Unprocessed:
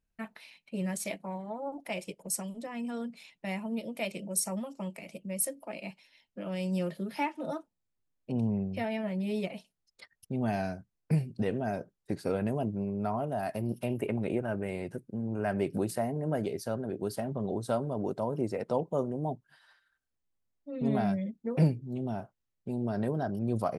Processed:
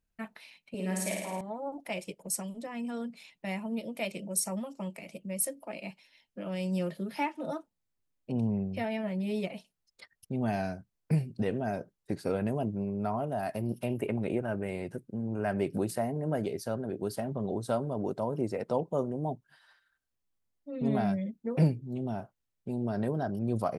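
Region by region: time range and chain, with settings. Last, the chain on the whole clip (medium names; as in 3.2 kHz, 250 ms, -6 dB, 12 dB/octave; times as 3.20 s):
0.74–1.41 s: high-pass 240 Hz + flutter echo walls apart 9.2 m, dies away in 1.1 s
whole clip: none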